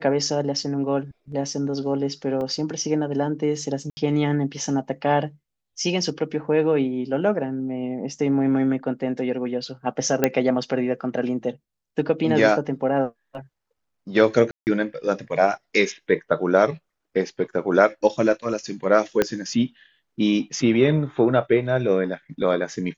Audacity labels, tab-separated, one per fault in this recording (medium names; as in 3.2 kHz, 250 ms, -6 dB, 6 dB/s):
2.410000	2.410000	dropout 2.4 ms
3.900000	3.970000	dropout 70 ms
10.240000	10.240000	pop -4 dBFS
14.510000	14.670000	dropout 159 ms
19.220000	19.220000	pop -6 dBFS